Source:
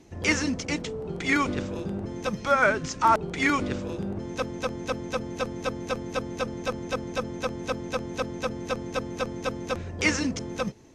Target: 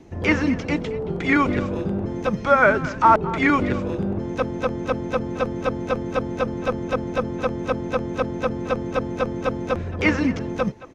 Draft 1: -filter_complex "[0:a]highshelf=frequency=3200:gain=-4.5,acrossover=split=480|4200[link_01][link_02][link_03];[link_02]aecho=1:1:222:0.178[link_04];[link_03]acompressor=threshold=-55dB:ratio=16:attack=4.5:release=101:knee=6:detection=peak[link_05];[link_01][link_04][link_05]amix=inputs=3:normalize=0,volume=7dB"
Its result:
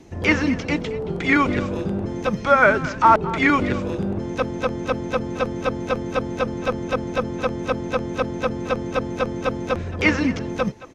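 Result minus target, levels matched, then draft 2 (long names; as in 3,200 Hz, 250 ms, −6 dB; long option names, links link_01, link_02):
8,000 Hz band +3.0 dB
-filter_complex "[0:a]highshelf=frequency=3200:gain=-12.5,acrossover=split=480|4200[link_01][link_02][link_03];[link_02]aecho=1:1:222:0.178[link_04];[link_03]acompressor=threshold=-55dB:ratio=16:attack=4.5:release=101:knee=6:detection=peak[link_05];[link_01][link_04][link_05]amix=inputs=3:normalize=0,volume=7dB"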